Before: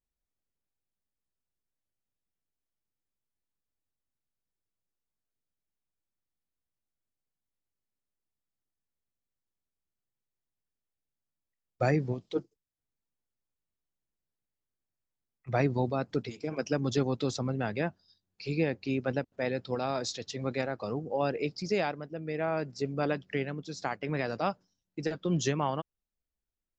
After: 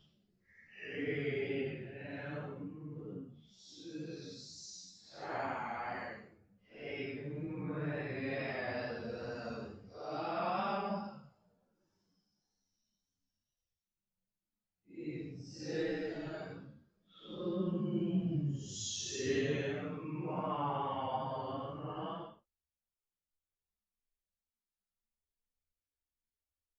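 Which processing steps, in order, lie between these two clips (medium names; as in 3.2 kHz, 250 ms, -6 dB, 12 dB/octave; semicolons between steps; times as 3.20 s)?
Paulstretch 8.6×, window 0.05 s, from 23.23 s; wow and flutter 25 cents; three-phase chorus; trim -4.5 dB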